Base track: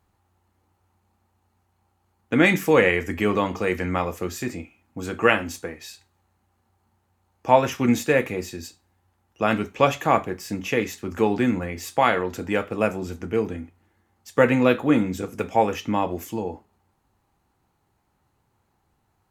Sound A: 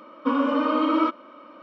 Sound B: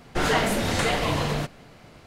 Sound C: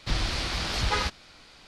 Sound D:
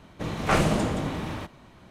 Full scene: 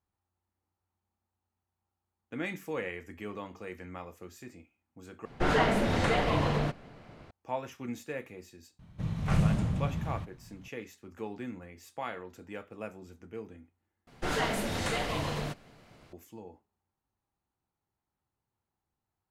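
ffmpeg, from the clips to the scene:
ffmpeg -i bed.wav -i cue0.wav -i cue1.wav -i cue2.wav -i cue3.wav -filter_complex "[2:a]asplit=2[link_01][link_02];[0:a]volume=-18.5dB[link_03];[link_01]lowpass=frequency=2000:poles=1[link_04];[4:a]lowshelf=frequency=220:width_type=q:width=1.5:gain=12.5[link_05];[link_03]asplit=3[link_06][link_07][link_08];[link_06]atrim=end=5.254[link_09];[link_04]atrim=end=2.06,asetpts=PTS-STARTPTS,volume=-2dB[link_10];[link_07]atrim=start=7.306:end=14.074[link_11];[link_02]atrim=end=2.06,asetpts=PTS-STARTPTS,volume=-8dB[link_12];[link_08]atrim=start=16.126[link_13];[link_05]atrim=end=1.9,asetpts=PTS-STARTPTS,volume=-13dB,afade=type=in:duration=0.004:curve=hsin,afade=type=out:start_time=1.896:duration=0.004:curve=hsin,adelay=8790[link_14];[link_09][link_10]acrossfade=duration=0.004:curve1=hsin:curve2=hsin[link_15];[link_15][link_11]acrossfade=duration=0.004:curve1=hsin:curve2=hsin[link_16];[link_16][link_12]acrossfade=duration=0.004:curve1=hsin:curve2=hsin[link_17];[link_17][link_13]acrossfade=duration=0.004:curve1=hsin:curve2=hsin[link_18];[link_18][link_14]amix=inputs=2:normalize=0" out.wav

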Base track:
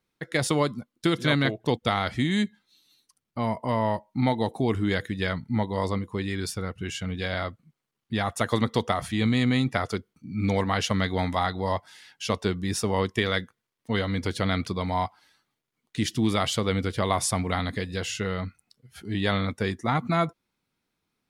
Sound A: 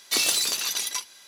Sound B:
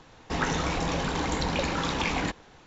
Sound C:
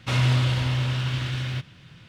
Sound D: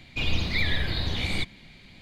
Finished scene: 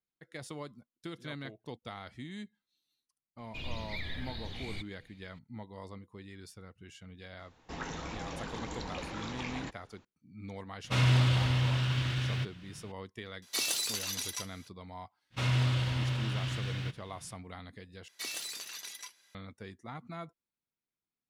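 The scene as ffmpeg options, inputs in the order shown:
ffmpeg -i bed.wav -i cue0.wav -i cue1.wav -i cue2.wav -i cue3.wav -filter_complex "[3:a]asplit=2[link_01][link_02];[1:a]asplit=2[link_03][link_04];[0:a]volume=-19dB[link_05];[link_04]equalizer=frequency=1900:width_type=o:width=0.79:gain=6[link_06];[link_05]asplit=2[link_07][link_08];[link_07]atrim=end=18.084[link_09];[link_06]atrim=end=1.27,asetpts=PTS-STARTPTS,volume=-17dB[link_10];[link_08]atrim=start=19.346[link_11];[4:a]atrim=end=2.01,asetpts=PTS-STARTPTS,volume=-14dB,afade=type=in:duration=0.004:curve=hsin,afade=type=out:start_time=2.006:duration=0.004:curve=hsin,adelay=3380[link_12];[2:a]atrim=end=2.66,asetpts=PTS-STARTPTS,volume=-12.5dB,afade=type=in:duration=0.004:curve=hsin,afade=type=out:start_time=2.656:duration=0.004:curve=hsin,adelay=7390[link_13];[link_01]atrim=end=2.08,asetpts=PTS-STARTPTS,volume=-4dB,afade=type=in:duration=0.004:curve=hsin,afade=type=out:start_time=2.076:duration=0.004:curve=hsin,adelay=10840[link_14];[link_03]atrim=end=1.27,asetpts=PTS-STARTPTS,volume=-9dB,afade=type=in:duration=0.004:curve=hsin,afade=type=out:start_time=1.266:duration=0.004:curve=hsin,adelay=13420[link_15];[link_02]atrim=end=2.08,asetpts=PTS-STARTPTS,volume=-7.5dB,afade=type=in:duration=0.05,afade=type=out:start_time=2.03:duration=0.05,adelay=15300[link_16];[link_09][link_10]acrossfade=duration=0.004:curve1=hsin:curve2=hsin[link_17];[link_17][link_11]acrossfade=duration=0.004:curve1=hsin:curve2=hsin[link_18];[link_18][link_12][link_13][link_14][link_15][link_16]amix=inputs=6:normalize=0" out.wav

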